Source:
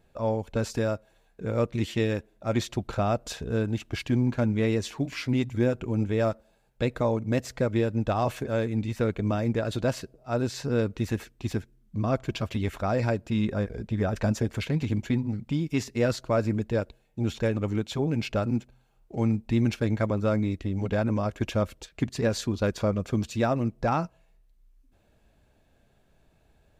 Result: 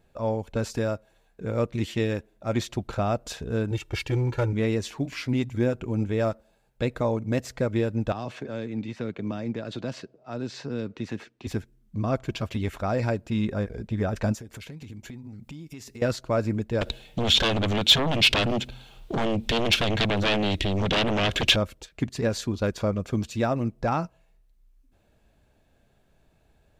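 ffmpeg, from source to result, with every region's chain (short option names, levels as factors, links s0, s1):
-filter_complex "[0:a]asettb=1/sr,asplit=3[s0][s1][s2];[s0]atrim=end=3.714[s3];[s1]atrim=start=3.71:end=4.53,asetpts=PTS-STARTPTS,afade=t=in:d=0.004:c=qsin,afade=t=out:st=0.816:d=0.004:c=qsin,aecho=1:1:2.2:0.94,atrim=end_sample=36162,aeval=exprs='clip(val(0),-1,0.0891)':c=same[s4];[s2]atrim=start=4.526[s5];[s3][s4]acrossfade=d=0.004:c1=hsin:c2=qsin[s6];[s6][s5]acrossfade=d=0.004:c1=qsin:c2=hsin,asettb=1/sr,asplit=3[s7][s8][s9];[s7]atrim=end=8.124[s10];[s8]atrim=start=8.12:end=11.47,asetpts=PTS-STARTPTS,afade=t=in:d=0.004:c=qsin,afade=t=out:st=3.346:d=0.004:c=qsin,highpass=170,lowpass=4700,acrossover=split=260|3000[s11][s12][s13];[s12]acompressor=threshold=0.0178:ratio=3:attack=3.2:release=140:knee=2.83:detection=peak[s14];[s11][s14][s13]amix=inputs=3:normalize=0[s15];[s9]atrim=start=11.466[s16];[s10][s15]acrossfade=d=0.004:c1=hsin:c2=qsin[s17];[s17][s16]acrossfade=d=0.004:c1=qsin:c2=hsin,asettb=1/sr,asplit=3[s18][s19][s20];[s18]atrim=end=14.344[s21];[s19]atrim=start=14.34:end=16.02,asetpts=PTS-STARTPTS,afade=t=in:d=0.004:c=qsin,afade=t=out:st=1.676:d=0.004:c=qsin,highshelf=f=6200:g=9,acompressor=threshold=0.0126:ratio=6:attack=3.2:release=140:knee=1:detection=peak[s22];[s20]atrim=start=16.016[s23];[s21][s22]acrossfade=d=0.004:c1=hsin:c2=qsin[s24];[s24][s23]acrossfade=d=0.004:c1=qsin:c2=hsin,asettb=1/sr,asplit=3[s25][s26][s27];[s25]atrim=end=16.814[s28];[s26]atrim=start=16.81:end=21.56,asetpts=PTS-STARTPTS,afade=t=in:d=0.004:c=qsin,afade=t=out:st=4.746:d=0.004:c=qsin,acompressor=threshold=0.0178:ratio=2:attack=3.2:release=140:knee=1:detection=peak,aeval=exprs='0.0841*sin(PI/2*3.98*val(0)/0.0841)':c=same,equalizer=f=3400:w=1.5:g=14[s29];[s27]atrim=start=21.556[s30];[s28][s29]acrossfade=d=0.004:c1=hsin:c2=qsin[s31];[s31][s30]acrossfade=d=0.004:c1=qsin:c2=hsin"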